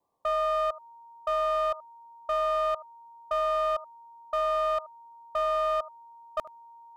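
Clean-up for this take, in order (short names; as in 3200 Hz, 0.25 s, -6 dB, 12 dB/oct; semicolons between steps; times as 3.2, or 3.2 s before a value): clip repair -22.5 dBFS; notch 930 Hz, Q 30; denoiser 25 dB, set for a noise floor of -51 dBFS; inverse comb 76 ms -18.5 dB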